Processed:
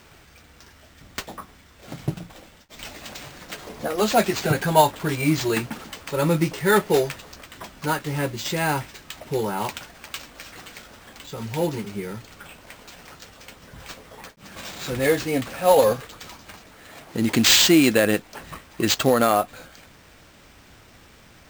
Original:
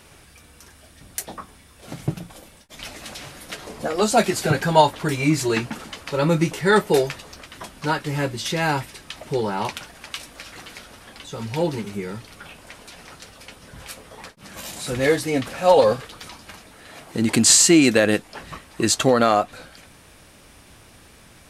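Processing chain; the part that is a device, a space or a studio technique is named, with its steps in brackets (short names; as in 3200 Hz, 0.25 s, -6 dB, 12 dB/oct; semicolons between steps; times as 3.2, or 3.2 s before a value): early companding sampler (sample-rate reducer 11000 Hz, jitter 0%; companded quantiser 6-bit); gain -1.5 dB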